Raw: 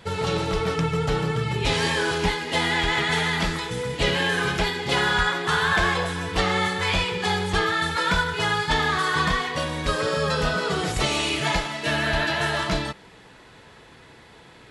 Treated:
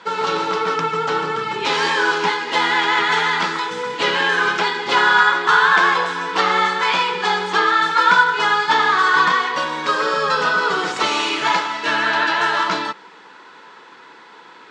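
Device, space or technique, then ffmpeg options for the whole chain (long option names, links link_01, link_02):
television speaker: -af "highpass=frequency=230:width=0.5412,highpass=frequency=230:width=1.3066,equalizer=frequency=250:width_type=q:width=4:gain=-4,equalizer=frequency=640:width_type=q:width=4:gain=-6,equalizer=frequency=970:width_type=q:width=4:gain=9,equalizer=frequency=1400:width_type=q:width=4:gain=8,lowpass=frequency=6800:width=0.5412,lowpass=frequency=6800:width=1.3066,volume=3.5dB"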